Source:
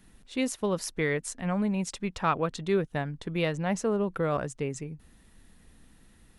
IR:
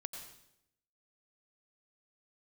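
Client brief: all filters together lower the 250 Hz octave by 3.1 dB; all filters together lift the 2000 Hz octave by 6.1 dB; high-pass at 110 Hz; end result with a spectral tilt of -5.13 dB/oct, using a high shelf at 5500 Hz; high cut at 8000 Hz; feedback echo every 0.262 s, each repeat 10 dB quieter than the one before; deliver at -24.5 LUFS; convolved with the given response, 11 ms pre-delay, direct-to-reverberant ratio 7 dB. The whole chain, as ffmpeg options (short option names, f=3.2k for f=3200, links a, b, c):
-filter_complex "[0:a]highpass=110,lowpass=8k,equalizer=f=250:t=o:g=-4,equalizer=f=2k:t=o:g=7.5,highshelf=f=5.5k:g=-3.5,aecho=1:1:262|524|786|1048:0.316|0.101|0.0324|0.0104,asplit=2[a][b];[1:a]atrim=start_sample=2205,adelay=11[c];[b][c]afir=irnorm=-1:irlink=0,volume=-5dB[d];[a][d]amix=inputs=2:normalize=0,volume=4.5dB"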